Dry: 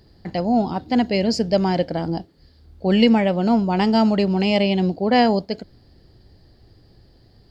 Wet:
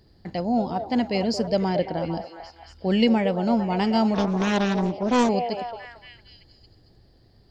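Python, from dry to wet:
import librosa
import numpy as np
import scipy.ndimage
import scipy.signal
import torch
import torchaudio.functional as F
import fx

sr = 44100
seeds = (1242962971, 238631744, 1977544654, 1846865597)

y = fx.lowpass(x, sr, hz=5600.0, slope=12, at=(1.69, 2.14))
y = fx.echo_stepped(y, sr, ms=226, hz=610.0, octaves=0.7, feedback_pct=70, wet_db=-5)
y = fx.doppler_dist(y, sr, depth_ms=0.52, at=(4.14, 5.29))
y = F.gain(torch.from_numpy(y), -4.5).numpy()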